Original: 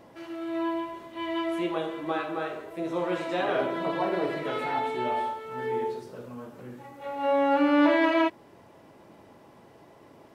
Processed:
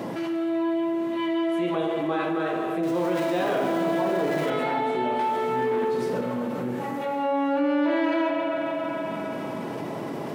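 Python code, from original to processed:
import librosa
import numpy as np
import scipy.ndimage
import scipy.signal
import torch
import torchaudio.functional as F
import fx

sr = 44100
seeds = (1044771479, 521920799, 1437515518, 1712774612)

y = fx.zero_step(x, sr, step_db=-33.5, at=(2.83, 4.5))
y = fx.low_shelf(y, sr, hz=260.0, db=11.0)
y = fx.echo_feedback(y, sr, ms=137, feedback_pct=51, wet_db=-14.5)
y = fx.leveller(y, sr, passes=2, at=(5.19, 6.21))
y = scipy.signal.sosfilt(scipy.signal.butter(4, 150.0, 'highpass', fs=sr, output='sos'), y)
y = fx.rev_spring(y, sr, rt60_s=3.0, pass_ms=(45, 54), chirp_ms=25, drr_db=7.0)
y = fx.env_flatten(y, sr, amount_pct=70)
y = y * 10.0 ** (-8.0 / 20.0)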